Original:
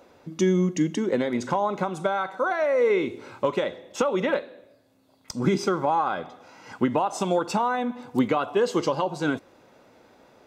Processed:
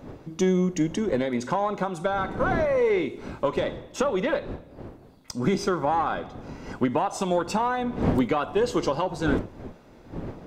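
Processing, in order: one diode to ground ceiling -13 dBFS; wind noise 360 Hz -36 dBFS

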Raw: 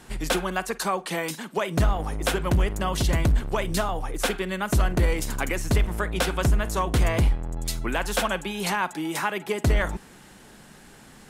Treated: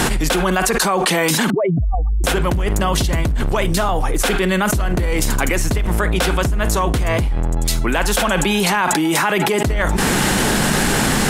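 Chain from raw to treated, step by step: 1.5–2.24 spectral contrast raised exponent 3.1; fast leveller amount 100%

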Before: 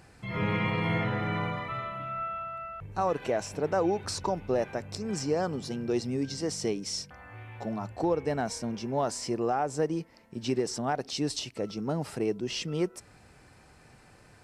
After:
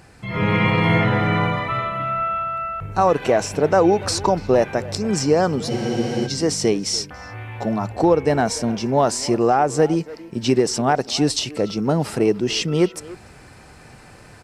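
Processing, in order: speakerphone echo 0.29 s, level -16 dB; AGC gain up to 4.5 dB; spectral freeze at 5.71, 0.55 s; gain +7 dB

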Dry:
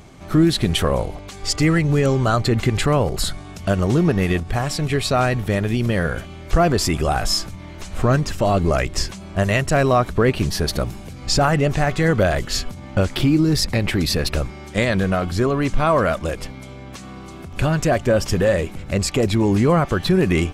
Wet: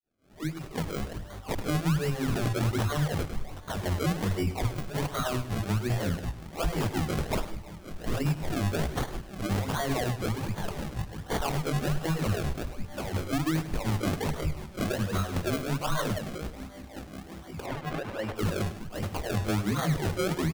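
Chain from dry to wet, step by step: opening faded in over 1.59 s; doubler 19 ms -2.5 dB; harmonic tremolo 5.5 Hz, depth 100%, crossover 1200 Hz; dispersion lows, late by 0.117 s, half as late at 370 Hz; limiter -14.5 dBFS, peak gain reduction 10 dB; dynamic EQ 510 Hz, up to -6 dB, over -36 dBFS, Q 0.95; decimation with a swept rate 33×, swing 100% 1.3 Hz; 17.66–18.36 tone controls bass -10 dB, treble -12 dB; warbling echo 0.102 s, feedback 31%, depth 65 cents, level -13 dB; gain -3.5 dB

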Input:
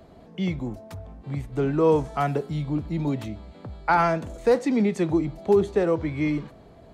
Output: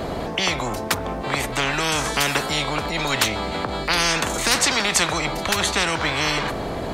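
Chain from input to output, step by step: 2.86–4.21 transient shaper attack -8 dB, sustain +2 dB; spectral compressor 10:1; gain +7.5 dB

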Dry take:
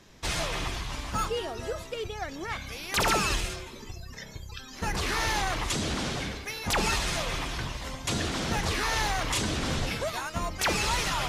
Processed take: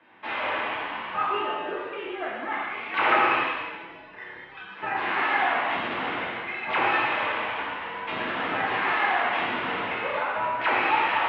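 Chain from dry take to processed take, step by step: ten-band EQ 250 Hz -8 dB, 1000 Hz +6 dB, 2000 Hz +4 dB; mistuned SSB -61 Hz 230–3000 Hz; non-linear reverb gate 0.44 s falling, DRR -6.5 dB; gain -5 dB

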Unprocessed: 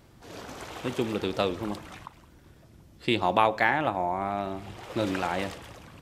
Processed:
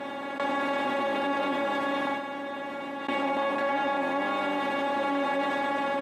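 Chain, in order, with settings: per-bin compression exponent 0.2; high shelf 2000 Hz -9 dB; resonator 280 Hz, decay 0.21 s, harmonics all, mix 100%; echo 0.158 s -13 dB; gate with hold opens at -26 dBFS; comb 5 ms, depth 32%; in parallel at -7 dB: soft clip -34.5 dBFS, distortion -9 dB; on the sum: HPF 120 Hz 24 dB/oct; fast leveller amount 70%

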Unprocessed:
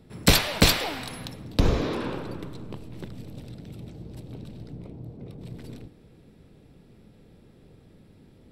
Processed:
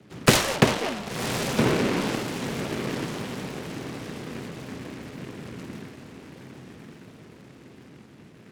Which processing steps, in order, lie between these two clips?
0.56–1.97 median filter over 15 samples; diffused feedback echo 1.069 s, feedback 52%, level -7 dB; mistuned SSB -50 Hz 190–3300 Hz; noise-modulated delay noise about 1600 Hz, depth 0.14 ms; gain +4.5 dB

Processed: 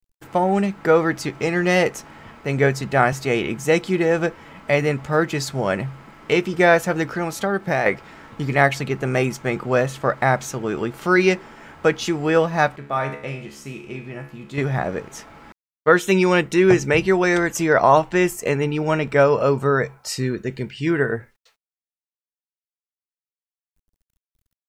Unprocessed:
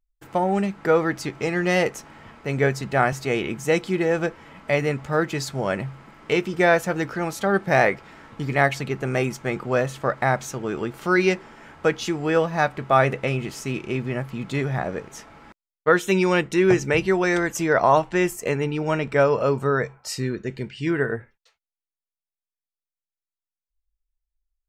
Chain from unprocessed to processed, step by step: 7.02–7.86 compressor 3:1, threshold -22 dBFS, peak gain reduction 7.5 dB; bit-crush 12-bit; 12.76–14.58 resonator 71 Hz, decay 0.6 s, harmonics all, mix 80%; gain +3 dB

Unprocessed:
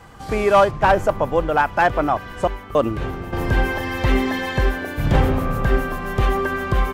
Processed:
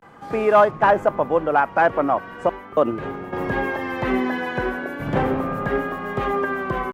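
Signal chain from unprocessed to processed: vibrato 0.38 Hz 79 cents; three-band isolator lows -19 dB, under 150 Hz, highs -12 dB, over 2300 Hz

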